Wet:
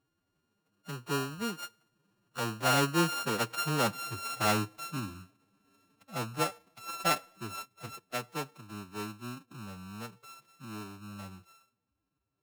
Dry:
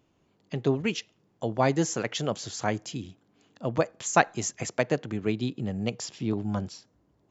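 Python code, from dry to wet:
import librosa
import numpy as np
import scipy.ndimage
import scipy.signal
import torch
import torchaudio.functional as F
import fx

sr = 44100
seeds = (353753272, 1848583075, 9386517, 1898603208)

y = np.r_[np.sort(x[:len(x) // 32 * 32].reshape(-1, 32), axis=1).ravel(), x[len(x) // 32 * 32:]]
y = fx.doppler_pass(y, sr, speed_mps=8, closest_m=5.6, pass_at_s=2.38)
y = fx.stretch_vocoder(y, sr, factor=1.7)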